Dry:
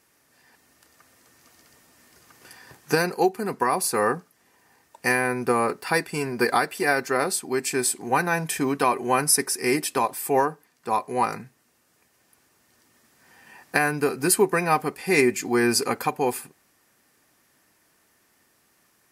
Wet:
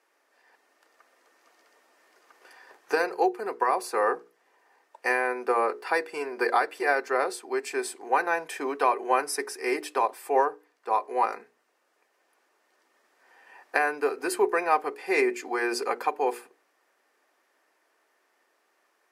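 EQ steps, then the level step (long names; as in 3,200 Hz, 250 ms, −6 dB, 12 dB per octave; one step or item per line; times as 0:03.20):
high-pass filter 380 Hz 24 dB per octave
low-pass filter 1,700 Hz 6 dB per octave
mains-hum notches 60/120/180/240/300/360/420/480 Hz
0.0 dB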